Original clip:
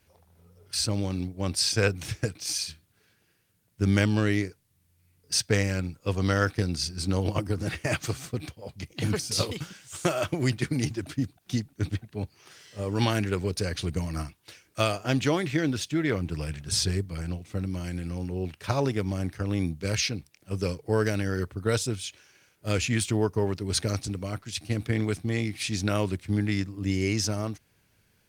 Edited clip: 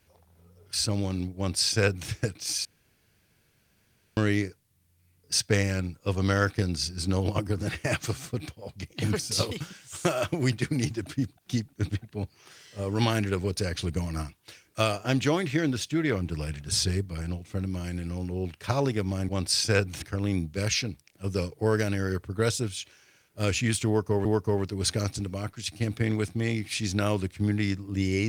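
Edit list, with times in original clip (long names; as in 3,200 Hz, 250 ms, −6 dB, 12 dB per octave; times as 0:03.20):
0:01.37–0:02.10: duplicate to 0:19.29
0:02.65–0:04.17: fill with room tone
0:23.14–0:23.52: repeat, 2 plays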